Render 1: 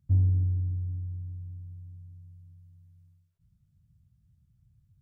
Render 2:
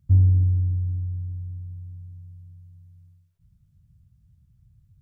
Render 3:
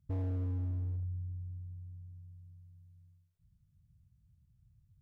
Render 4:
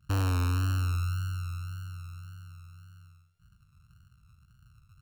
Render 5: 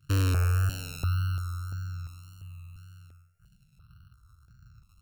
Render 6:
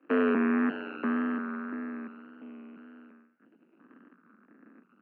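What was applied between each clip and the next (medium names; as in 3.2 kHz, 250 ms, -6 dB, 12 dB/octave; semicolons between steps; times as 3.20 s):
bass shelf 89 Hz +6.5 dB; trim +3.5 dB
hard clipper -24 dBFS, distortion -5 dB; trim -9 dB
sorted samples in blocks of 32 samples; vibrato 1.8 Hz 55 cents; trim +7.5 dB
stepped phaser 2.9 Hz 210–3100 Hz; trim +4.5 dB
full-wave rectifier; mistuned SSB +59 Hz 170–2200 Hz; trim +7 dB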